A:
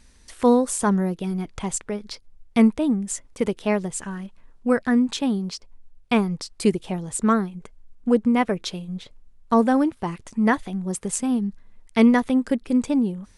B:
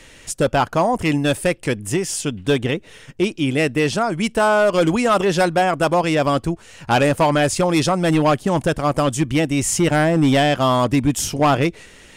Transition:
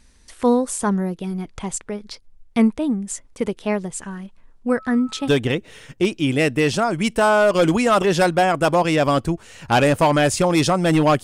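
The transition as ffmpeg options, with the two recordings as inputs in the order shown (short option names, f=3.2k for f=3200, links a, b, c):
-filter_complex "[0:a]asettb=1/sr,asplit=3[a][b][c];[a]atrim=end=4.784[d];[b]atrim=start=4.78:end=5.3,asetpts=PTS-STARTPTS,afade=t=in:d=0.004:c=qsin,afade=t=out:st=0.516:d=0.004:c=qsin,aeval=exprs='val(0)+0.01*sin(2*PI*1300*n/s)':c=same[e];[c]atrim=start=5.296[f];[d][e]acrossfade=d=0.004:c1=hsin:c2=qsin[g];[g][f]acrossfade=d=0.004:c1=qsin:c2=hsin,apad=whole_dur=11.23,atrim=end=11.23,atrim=end=5.3,asetpts=PTS-STARTPTS[h];[1:a]atrim=start=2.43:end=8.42,asetpts=PTS-STARTPTS[i];[h][i]acrossfade=d=0.06:c1=tri:c2=tri"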